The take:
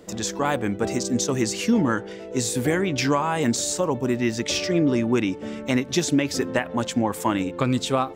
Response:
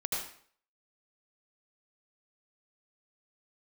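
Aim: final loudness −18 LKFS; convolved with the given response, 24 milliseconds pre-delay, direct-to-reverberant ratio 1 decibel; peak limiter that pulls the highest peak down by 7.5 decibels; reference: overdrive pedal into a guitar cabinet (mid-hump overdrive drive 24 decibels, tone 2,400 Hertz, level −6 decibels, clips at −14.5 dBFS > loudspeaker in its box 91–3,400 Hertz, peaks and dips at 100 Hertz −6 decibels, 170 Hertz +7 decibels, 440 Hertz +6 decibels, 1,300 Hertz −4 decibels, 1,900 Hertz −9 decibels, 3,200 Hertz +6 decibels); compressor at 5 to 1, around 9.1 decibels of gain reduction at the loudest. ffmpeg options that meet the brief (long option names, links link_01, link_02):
-filter_complex "[0:a]acompressor=threshold=-27dB:ratio=5,alimiter=limit=-21.5dB:level=0:latency=1,asplit=2[link_01][link_02];[1:a]atrim=start_sample=2205,adelay=24[link_03];[link_02][link_03]afir=irnorm=-1:irlink=0,volume=-6dB[link_04];[link_01][link_04]amix=inputs=2:normalize=0,asplit=2[link_05][link_06];[link_06]highpass=frequency=720:poles=1,volume=24dB,asoftclip=type=tanh:threshold=-14.5dB[link_07];[link_05][link_07]amix=inputs=2:normalize=0,lowpass=frequency=2400:poles=1,volume=-6dB,highpass=91,equalizer=frequency=100:width_type=q:width=4:gain=-6,equalizer=frequency=170:width_type=q:width=4:gain=7,equalizer=frequency=440:width_type=q:width=4:gain=6,equalizer=frequency=1300:width_type=q:width=4:gain=-4,equalizer=frequency=1900:width_type=q:width=4:gain=-9,equalizer=frequency=3200:width_type=q:width=4:gain=6,lowpass=frequency=3400:width=0.5412,lowpass=frequency=3400:width=1.3066,volume=5dB"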